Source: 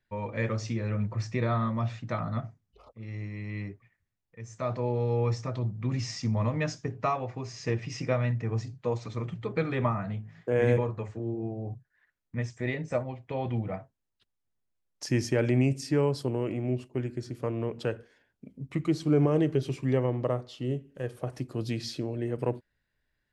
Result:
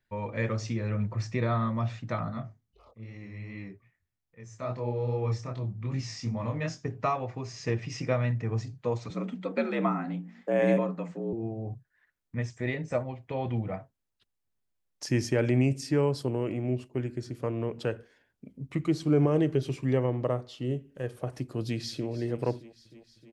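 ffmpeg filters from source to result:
-filter_complex "[0:a]asplit=3[a][b][c];[a]afade=t=out:st=2.3:d=0.02[d];[b]flanger=delay=22.5:depth=5:speed=2.5,afade=t=in:st=2.3:d=0.02,afade=t=out:st=6.84:d=0.02[e];[c]afade=t=in:st=6.84:d=0.02[f];[d][e][f]amix=inputs=3:normalize=0,asettb=1/sr,asplit=3[g][h][i];[g]atrim=end=9.104[j];[h]atrim=start=9.1:end=11.33,asetpts=PTS-STARTPTS,afade=t=in:d=0.004:c=qsin,afade=t=out:st=2.226:d=0.004:c=qsin,afreqshift=70[k];[i]atrim=start=11.326[l];[j][k]acrossfade=d=0.004:c1=hsin:c2=qsin[m];[m][l]acrossfade=d=0.004:c1=qsin:c2=hsin,asplit=2[n][o];[o]afade=t=in:st=21.61:d=0.01,afade=t=out:st=22.1:d=0.01,aecho=0:1:310|620|930|1240|1550|1860|2170|2480|2790|3100:0.149624|0.112218|0.0841633|0.0631224|0.0473418|0.0355064|0.0266298|0.0199723|0.0149793|0.0112344[p];[n][p]amix=inputs=2:normalize=0"

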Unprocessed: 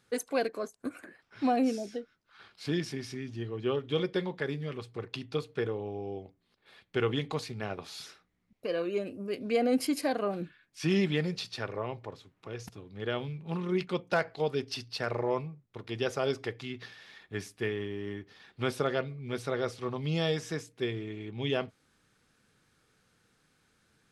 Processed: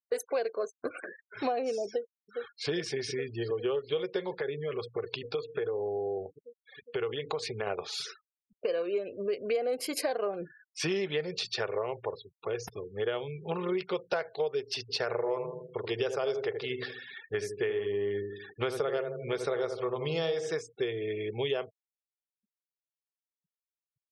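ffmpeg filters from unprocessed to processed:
-filter_complex "[0:a]asplit=2[a][b];[b]afade=t=in:st=1.87:d=0.01,afade=t=out:st=2.69:d=0.01,aecho=0:1:410|820|1230|1640|2050|2460|2870|3280|3690|4100|4510|4920:0.281838|0.239563|0.203628|0.173084|0.147121|0.125053|0.106295|0.0903509|0.0767983|0.0652785|0.0554867|0.0471637[c];[a][c]amix=inputs=2:normalize=0,asettb=1/sr,asplit=3[d][e][f];[d]atrim=end=4.384[g];[e]atrim=start=4.38:end=7.67,asetpts=PTS-STARTPTS,afade=t=in:d=0.004:c=qsin,afade=t=out:st=3.286:d=0.004:c=qsin,acompressor=threshold=-37dB:ratio=3:attack=3.2:release=140:knee=1:detection=peak[h];[f]atrim=start=7.666[i];[g][h]acrossfade=d=0.004:c1=hsin:c2=qsin[j];[j][i]acrossfade=d=0.004:c1=qsin:c2=hsin,asplit=3[k][l][m];[k]afade=t=out:st=14.88:d=0.02[n];[l]asplit=2[o][p];[p]adelay=79,lowpass=f=940:p=1,volume=-6dB,asplit=2[q][r];[r]adelay=79,lowpass=f=940:p=1,volume=0.48,asplit=2[s][t];[t]adelay=79,lowpass=f=940:p=1,volume=0.48,asplit=2[u][v];[v]adelay=79,lowpass=f=940:p=1,volume=0.48,asplit=2[w][x];[x]adelay=79,lowpass=f=940:p=1,volume=0.48,asplit=2[y][z];[z]adelay=79,lowpass=f=940:p=1,volume=0.48[aa];[o][q][s][u][w][y][aa]amix=inputs=7:normalize=0,afade=t=in:st=14.88:d=0.02,afade=t=out:st=20.52:d=0.02[ab];[m]afade=t=in:st=20.52:d=0.02[ac];[n][ab][ac]amix=inputs=3:normalize=0,afftfilt=real='re*gte(hypot(re,im),0.00355)':imag='im*gte(hypot(re,im),0.00355)':win_size=1024:overlap=0.75,lowshelf=f=340:t=q:w=3:g=-7,acompressor=threshold=-37dB:ratio=5,volume=8dB"

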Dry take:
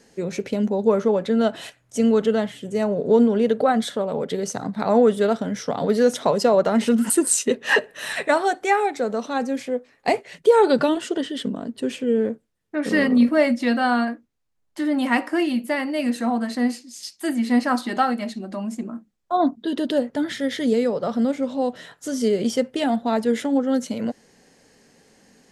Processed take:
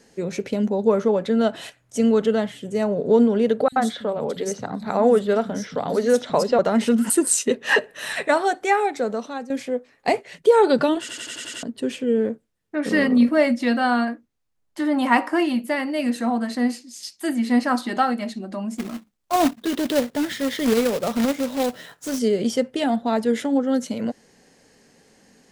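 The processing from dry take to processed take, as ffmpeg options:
-filter_complex "[0:a]asettb=1/sr,asplit=3[a][b][c];[a]atrim=end=3.684[d];[b]atrim=start=3.68:end=6.59,asetpts=PTS-STARTPTS,afade=t=in:d=0.004:c=qsin,afade=t=out:st=2.906:d=0.004:c=qsin,acrossover=split=190|4300[e][f][g];[e]adelay=40[h];[f]adelay=80[i];[h][i][g]amix=inputs=3:normalize=0,atrim=end_sample=128331[j];[c]atrim=start=6.586[k];[d][j]acrossfade=d=0.004:c1=hsin:c2=qsin[l];[l][k]acrossfade=d=0.004:c1=qsin:c2=hsin,asettb=1/sr,asplit=3[m][n][o];[m]atrim=end=14.804[p];[n]atrim=start=14.8:end=15.61,asetpts=PTS-STARTPTS,afade=t=in:d=0.004:c=qsin,afade=t=out:st=0.806:d=0.004:c=qsin,equalizer=f=980:w=1.5:g=7.5[q];[o]atrim=start=15.606[r];[p][q]acrossfade=d=0.004:c1=hsin:c2=qsin[s];[s][r]acrossfade=d=0.004:c1=qsin:c2=hsin,asplit=3[t][u][v];[t]afade=t=out:st=18.77:d=0.02[w];[u]acrusher=bits=2:mode=log:mix=0:aa=0.000001,afade=t=in:st=18.77:d=0.02,afade=t=out:st=22.18:d=0.02[x];[v]afade=t=in:st=22.18:d=0.02[y];[w][x][y]amix=inputs=3:normalize=0,asplit=9[z][aa][ab][ac][ad][ae][af][ag][ah];[z]atrim=end=9.5,asetpts=PTS-STARTPTS,afade=t=out:st=9.08:d=0.42:silence=0.223872[ai];[aa]atrim=start=9.5:end=11.092,asetpts=PTS-STARTPTS,afade=t=in:d=0.004:c=hsin:silence=0.223872[aj];[ab]atrim=start=10.998:end=11.092[ak];[ac]atrim=start=10.998:end=11.092[al];[ad]atrim=start=10.998:end=11.092[am];[ae]atrim=start=10.998:end=11.092[an];[af]atrim=start=10.998:end=11.092[ao];[ag]atrim=start=10.998:end=11.092[ap];[ah]atrim=start=11.628[aq];[ai][aj]concat=n=2:v=0:a=1[ar];[ar][ak]acrossfade=d=0.004:c1=hsin:c2=hsin[as];[as][al]acrossfade=d=0.004:c1=hsin:c2=hsin[at];[at][am]acrossfade=d=0.004:c1=hsin:c2=hsin[au];[au][an]acrossfade=d=0.004:c1=hsin:c2=hsin[av];[av][ao]acrossfade=d=0.004:c1=hsin:c2=hsin[aw];[aw][ap]acrossfade=d=0.004:c1=hsin:c2=hsin[ax];[ax][aq]acrossfade=d=0.004:c1=hsin:c2=hsin"

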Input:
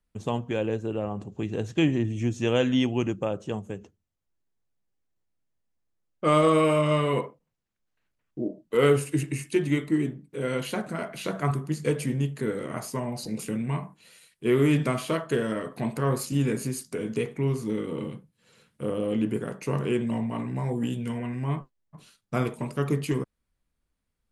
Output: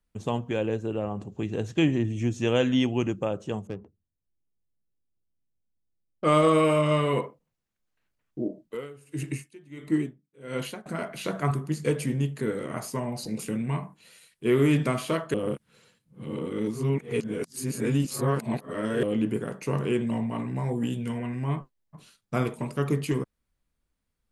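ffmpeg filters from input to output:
-filter_complex "[0:a]asettb=1/sr,asplit=3[a][b][c];[a]atrim=end=3.674[d];[b]atrim=start=3.67:end=6.24,asetpts=PTS-STARTPTS,afade=t=in:d=0.004:c=qsin,afade=t=out:st=2.566:d=0.004:c=qsin,adynamicsmooth=sensitivity=6:basefreq=510[e];[c]atrim=start=6.236[f];[d][e]acrossfade=d=0.004:c1=hsin:c2=qsin[g];[g][f]acrossfade=d=0.004:c1=qsin:c2=hsin,asettb=1/sr,asplit=3[h][i][j];[h]atrim=end=8.624[k];[i]atrim=start=8.62:end=10.86,asetpts=PTS-STARTPTS,afade=t=in:d=0.004:c=qsin,afade=t=out:st=2.236:d=0.004:c=qsin,aeval=exprs='val(0)*pow(10,-26*(0.5-0.5*cos(2*PI*1.5*n/s))/20)':c=same[l];[j]atrim=start=10.856[m];[k][l]acrossfade=d=0.004:c1=hsin:c2=qsin[n];[n][m]acrossfade=d=0.004:c1=qsin:c2=hsin,asplit=3[o][p][q];[o]atrim=end=15.342[r];[p]atrim=start=15.338:end=19.032,asetpts=PTS-STARTPTS,areverse[s];[q]atrim=start=19.028[t];[r][s]acrossfade=d=0.004:c1=hsin:c2=hsin[u];[u][t]acrossfade=d=0.004:c1=hsin:c2=hsin"

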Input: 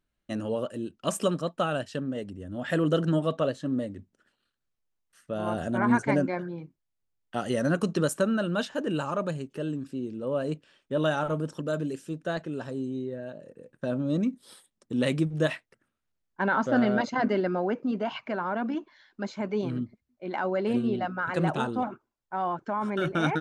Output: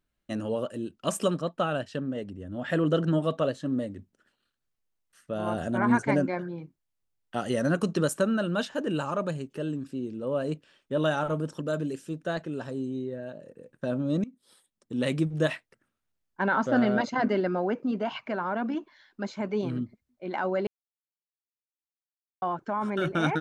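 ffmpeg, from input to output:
-filter_complex "[0:a]asettb=1/sr,asplit=3[a][b][c];[a]atrim=end=1.374[d];[b]atrim=start=1.37:end=3.2,asetpts=PTS-STARTPTS,afade=t=in:d=0.004:c=qsin,afade=t=out:st=1.826:d=0.004:c=qsin,highshelf=f=7.5k:g=-10.5[e];[c]atrim=start=3.196[f];[d][e]acrossfade=d=0.004:c1=hsin:c2=qsin[g];[g][f]acrossfade=d=0.004:c1=qsin:c2=hsin,asplit=4[h][i][j][k];[h]atrim=end=14.24,asetpts=PTS-STARTPTS,afade=t=out:st=14.236:d=0.004:c=hsin:silence=0.1[l];[i]atrim=start=14.24:end=20.67,asetpts=PTS-STARTPTS,afade=t=in:d=1.02:silence=0.1,afade=t=out:st=6.426:d=0.004:c=hsin[m];[j]atrim=start=20.67:end=22.42,asetpts=PTS-STARTPTS,volume=0[n];[k]atrim=start=22.42,asetpts=PTS-STARTPTS,afade=t=in:d=0.004:c=hsin[o];[l][m][n][o]concat=n=4:v=0:a=1"

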